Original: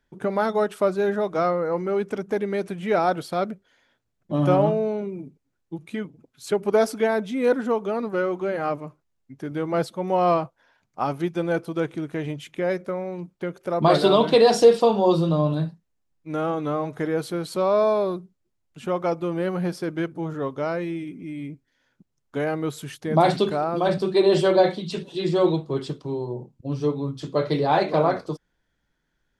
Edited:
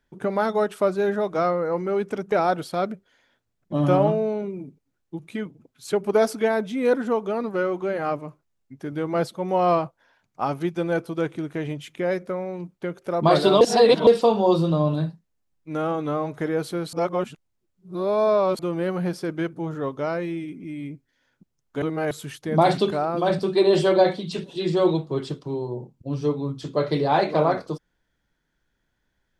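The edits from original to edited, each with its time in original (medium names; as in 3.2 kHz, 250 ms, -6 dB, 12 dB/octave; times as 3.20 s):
2.32–2.91 s: delete
14.20–14.66 s: reverse
17.52–19.18 s: reverse
22.41–22.70 s: reverse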